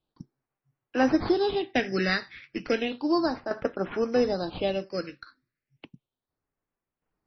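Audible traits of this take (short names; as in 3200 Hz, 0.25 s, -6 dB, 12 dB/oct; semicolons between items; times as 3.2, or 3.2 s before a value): aliases and images of a low sample rate 5600 Hz, jitter 0%; phasing stages 6, 0.33 Hz, lowest notch 780–4100 Hz; tremolo saw down 0.57 Hz, depth 65%; MP3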